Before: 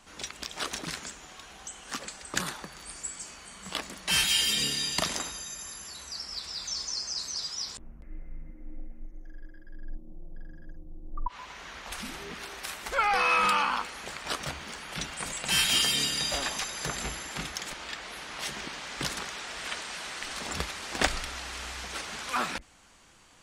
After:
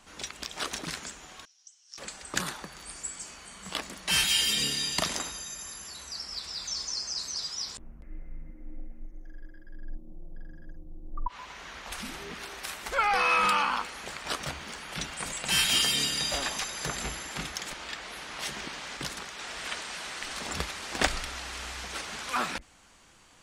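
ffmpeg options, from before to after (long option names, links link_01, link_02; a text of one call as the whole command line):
ffmpeg -i in.wav -filter_complex "[0:a]asettb=1/sr,asplit=3[link_01][link_02][link_03];[link_01]atrim=end=1.454[link_04];[link_02]atrim=start=1.45:end=1.98,asetpts=PTS-STARTPTS,afade=type=in:duration=0.004:curve=qsin,afade=type=out:start_time=0.526:duration=0.004:curve=qsin,bandpass=frequency=5500:width_type=q:width=9.3[link_05];[link_03]atrim=start=1.976[link_06];[link_04][link_05]acrossfade=duration=0.004:curve1=hsin:curve2=qsin[link_07];[link_07][link_06]acrossfade=duration=0.004:curve1=qsin:curve2=hsin,asplit=3[link_08][link_09][link_10];[link_08]atrim=end=18.972[link_11];[link_09]atrim=start=18.968:end=19.392,asetpts=PTS-STARTPTS,volume=-3.5dB[link_12];[link_10]atrim=start=19.388[link_13];[link_11][link_12]acrossfade=duration=0.004:curve1=hsin:curve2=hsin[link_14];[link_14][link_13]acrossfade=duration=0.004:curve1=hsin:curve2=hsin" out.wav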